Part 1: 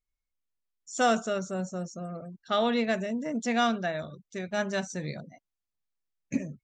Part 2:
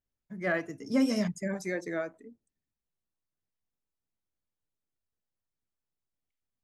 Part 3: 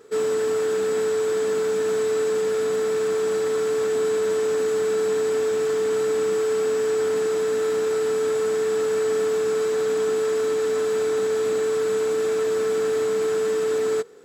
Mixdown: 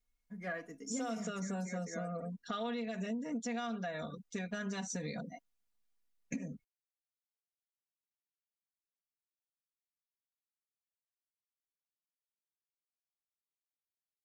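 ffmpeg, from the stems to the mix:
-filter_complex "[0:a]alimiter=level_in=1.5dB:limit=-24dB:level=0:latency=1:release=82,volume=-1.5dB,volume=0dB[a];[1:a]volume=-9dB[b];[a][b]amix=inputs=2:normalize=0,aecho=1:1:4.2:0.81,acompressor=threshold=-36dB:ratio=6"

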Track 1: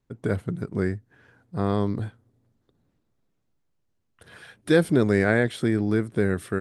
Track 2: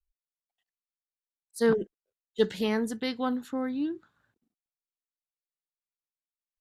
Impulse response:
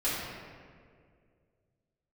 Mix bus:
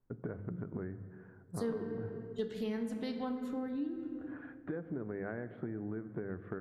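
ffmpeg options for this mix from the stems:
-filter_complex "[0:a]lowpass=f=1.6k:w=0.5412,lowpass=f=1.6k:w=1.3066,bandreject=f=50:t=h:w=6,bandreject=f=100:t=h:w=6,bandreject=f=150:t=h:w=6,bandreject=f=200:t=h:w=6,acompressor=threshold=-30dB:ratio=6,volume=-4.5dB,asplit=2[a][b];[b]volume=-21.5dB[c];[1:a]lowshelf=f=450:g=8.5,volume=-9.5dB,asplit=2[d][e];[e]volume=-12.5dB[f];[2:a]atrim=start_sample=2205[g];[c][f]amix=inputs=2:normalize=0[h];[h][g]afir=irnorm=-1:irlink=0[i];[a][d][i]amix=inputs=3:normalize=0,acompressor=threshold=-36dB:ratio=3"

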